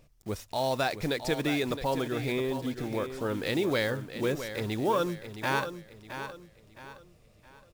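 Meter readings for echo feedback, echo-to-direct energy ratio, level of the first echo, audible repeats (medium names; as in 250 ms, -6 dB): 36%, -9.5 dB, -10.0 dB, 3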